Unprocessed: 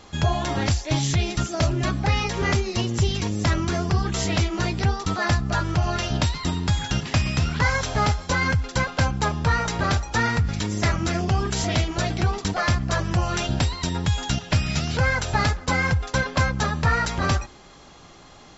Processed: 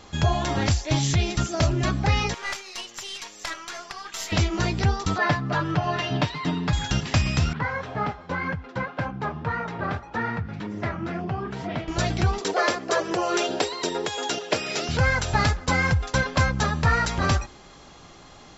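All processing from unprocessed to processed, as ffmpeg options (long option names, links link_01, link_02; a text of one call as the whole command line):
ffmpeg -i in.wav -filter_complex "[0:a]asettb=1/sr,asplit=3[link_01][link_02][link_03];[link_01]atrim=end=2.344[link_04];[link_02]atrim=start=2.34:end=4.32,asetpts=PTS-STARTPTS,afade=type=in:duration=0.004:curve=qsin,afade=type=out:start_time=1.976:duration=0.004:curve=qsin,highpass=1000,aeval=exprs='(tanh(10*val(0)+0.7)-tanh(0.7))/10':channel_layout=same,aecho=1:1:79:0.0891,atrim=end_sample=87318[link_05];[link_03]atrim=start=4.316[link_06];[link_04][link_05]acrossfade=duration=0.004:curve1=hsin:curve2=qsin[link_07];[link_07][link_06]acrossfade=duration=0.004:curve1=qsin:curve2=hsin,asettb=1/sr,asplit=3[link_08][link_09][link_10];[link_08]atrim=end=5.184[link_11];[link_09]atrim=start=5.18:end=6.73,asetpts=PTS-STARTPTS,afade=type=in:duration=0.004:curve=qsin,afade=type=out:start_time=1.546:duration=0.004:curve=qsin,highpass=150,lowpass=3200,aecho=1:1:6.8:0.72,atrim=end_sample=68355[link_12];[link_10]atrim=start=6.726[link_13];[link_11][link_12]acrossfade=duration=0.004:curve1=hsin:curve2=qsin[link_14];[link_14][link_13]acrossfade=duration=0.004:curve1=qsin:curve2=hsin,asettb=1/sr,asplit=3[link_15][link_16][link_17];[link_15]atrim=end=7.534[link_18];[link_16]atrim=start=7.53:end=11.88,asetpts=PTS-STARTPTS,afade=type=in:duration=0.004:curve=qsin,afade=type=out:start_time=4.346:duration=0.004:curve=qsin,highpass=130,lowpass=2000,flanger=delay=3.7:depth=7.9:regen=-45:speed=1.9:shape=triangular[link_19];[link_17]atrim=start=11.876[link_20];[link_18][link_19]acrossfade=duration=0.004:curve1=hsin:curve2=qsin[link_21];[link_21][link_20]acrossfade=duration=0.004:curve1=qsin:curve2=hsin,asettb=1/sr,asplit=3[link_22][link_23][link_24];[link_22]atrim=end=12.414[link_25];[link_23]atrim=start=12.41:end=14.89,asetpts=PTS-STARTPTS,afade=type=in:duration=0.004:curve=qsin,afade=type=out:start_time=2.476:duration=0.004:curve=qsin,aphaser=in_gain=1:out_gain=1:delay=4.3:decay=0.22:speed=1.4:type=triangular,highpass=frequency=420:width_type=q:width=3.8[link_26];[link_24]atrim=start=14.886[link_27];[link_25][link_26]acrossfade=duration=0.004:curve1=hsin:curve2=qsin[link_28];[link_28][link_27]acrossfade=duration=0.004:curve1=qsin:curve2=hsin" out.wav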